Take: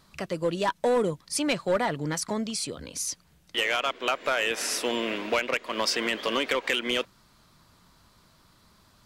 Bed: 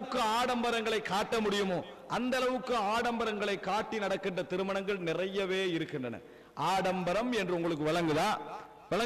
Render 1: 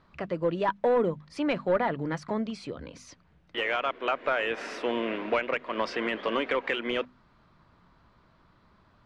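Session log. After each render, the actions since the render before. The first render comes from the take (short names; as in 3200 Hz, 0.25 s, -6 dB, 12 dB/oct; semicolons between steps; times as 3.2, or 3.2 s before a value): LPF 2100 Hz 12 dB/oct; notches 50/100/150/200/250 Hz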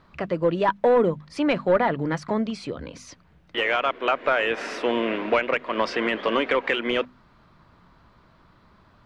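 gain +5.5 dB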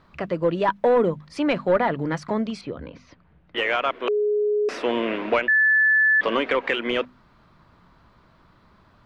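2.61–3.56 air absorption 280 m; 4.08–4.69 bleep 418 Hz -18.5 dBFS; 5.48–6.21 bleep 1740 Hz -14.5 dBFS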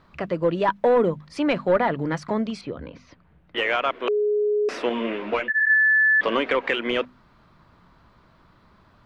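4.89–5.74 ensemble effect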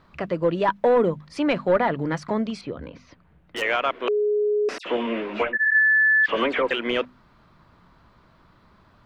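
2.8–3.62 hard clip -26 dBFS; 4.78–6.71 dispersion lows, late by 77 ms, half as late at 2400 Hz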